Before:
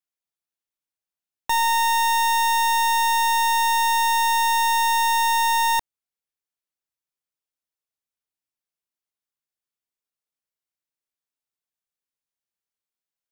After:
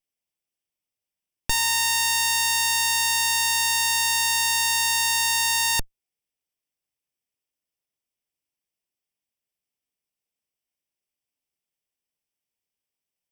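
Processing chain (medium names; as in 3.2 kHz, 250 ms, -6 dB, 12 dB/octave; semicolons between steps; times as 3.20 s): comb filter that takes the minimum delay 0.36 ms; trim +4 dB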